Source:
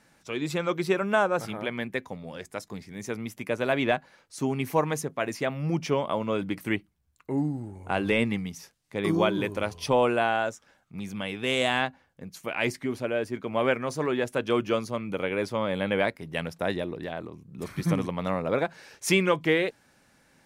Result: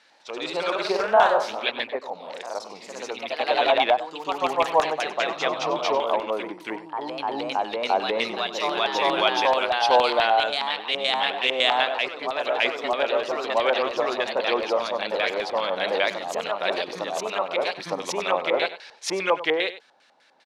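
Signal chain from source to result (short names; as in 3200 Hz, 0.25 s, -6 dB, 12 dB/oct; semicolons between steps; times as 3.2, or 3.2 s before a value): HPF 520 Hz 12 dB/oct; high shelf 7000 Hz +11 dB; LFO low-pass square 5 Hz 830–3800 Hz; echoes that change speed 95 ms, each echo +1 st, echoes 3; echo 96 ms -14.5 dB; gain +2 dB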